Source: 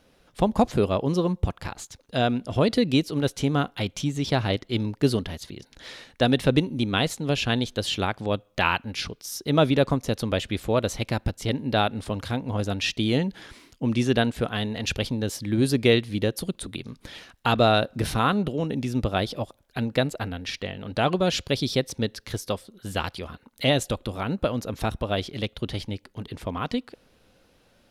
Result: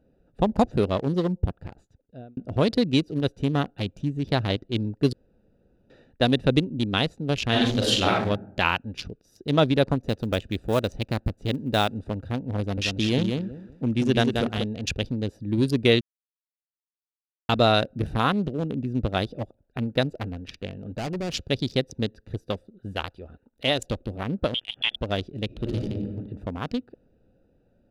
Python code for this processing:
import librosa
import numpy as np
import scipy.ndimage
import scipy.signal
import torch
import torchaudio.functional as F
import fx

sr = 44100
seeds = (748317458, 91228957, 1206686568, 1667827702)

y = fx.reverb_throw(x, sr, start_s=7.49, length_s=0.73, rt60_s=0.81, drr_db=-5.0)
y = fx.block_float(y, sr, bits=5, at=(10.02, 11.97), fade=0.02)
y = fx.echo_feedback(y, sr, ms=184, feedback_pct=25, wet_db=-4.0, at=(12.59, 14.64))
y = fx.clip_hard(y, sr, threshold_db=-25.0, at=(20.69, 21.34))
y = fx.peak_eq(y, sr, hz=160.0, db=-8.0, octaves=2.0, at=(22.93, 23.81))
y = fx.freq_invert(y, sr, carrier_hz=3400, at=(24.54, 24.96))
y = fx.reverb_throw(y, sr, start_s=25.46, length_s=0.59, rt60_s=1.2, drr_db=-4.5)
y = fx.edit(y, sr, fx.fade_out_span(start_s=1.46, length_s=0.91),
    fx.room_tone_fill(start_s=5.13, length_s=0.77),
    fx.silence(start_s=16.01, length_s=1.48), tone=tone)
y = fx.wiener(y, sr, points=41)
y = fx.dynamic_eq(y, sr, hz=5500.0, q=1.0, threshold_db=-47.0, ratio=4.0, max_db=4)